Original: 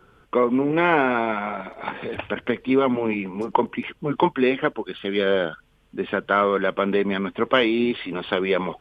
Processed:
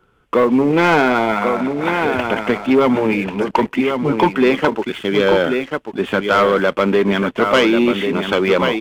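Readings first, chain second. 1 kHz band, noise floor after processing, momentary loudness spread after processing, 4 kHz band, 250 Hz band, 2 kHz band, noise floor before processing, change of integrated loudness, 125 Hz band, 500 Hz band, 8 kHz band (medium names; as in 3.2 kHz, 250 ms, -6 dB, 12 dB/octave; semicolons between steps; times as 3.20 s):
+6.0 dB, -48 dBFS, 6 LU, +7.0 dB, +7.0 dB, +6.5 dB, -59 dBFS, +6.5 dB, +7.5 dB, +6.5 dB, no reading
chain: delay 1090 ms -7.5 dB; waveshaping leveller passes 2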